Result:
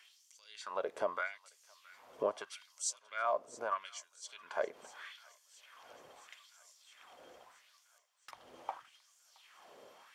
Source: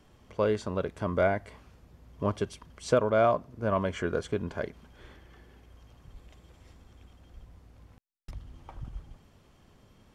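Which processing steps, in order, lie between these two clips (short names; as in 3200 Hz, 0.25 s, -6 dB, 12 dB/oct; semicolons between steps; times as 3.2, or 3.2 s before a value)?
compressor 3:1, threshold -39 dBFS, peak gain reduction 15 dB; LFO high-pass sine 0.79 Hz 490–6900 Hz; on a send: thin delay 0.67 s, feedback 71%, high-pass 1600 Hz, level -18 dB; on the sum: gain +3.5 dB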